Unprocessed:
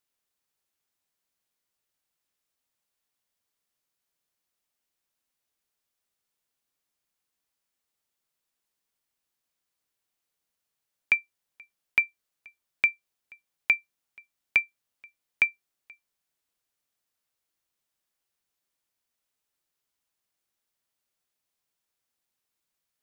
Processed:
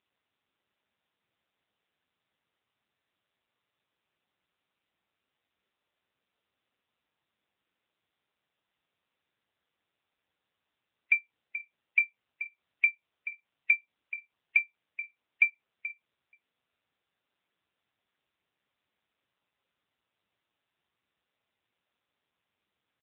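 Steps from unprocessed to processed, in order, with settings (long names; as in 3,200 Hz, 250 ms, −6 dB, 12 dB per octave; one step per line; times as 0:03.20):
gate on every frequency bin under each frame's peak −20 dB strong
in parallel at −10 dB: wrap-around overflow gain 20 dB
on the sum: single-tap delay 431 ms −13.5 dB
AMR narrowband 6.7 kbit/s 8,000 Hz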